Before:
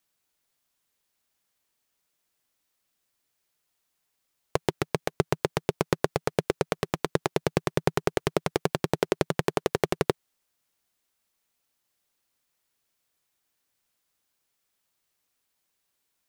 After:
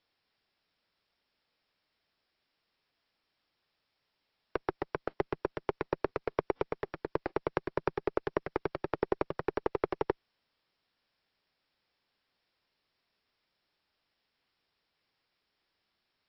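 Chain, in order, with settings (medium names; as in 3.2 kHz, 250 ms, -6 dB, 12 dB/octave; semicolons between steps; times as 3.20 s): comb filter that takes the minimum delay 0.44 ms; three-band isolator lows -16 dB, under 320 Hz, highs -16 dB, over 2.1 kHz; added noise white -76 dBFS; brick-wall FIR low-pass 5.6 kHz; AAC 48 kbps 22.05 kHz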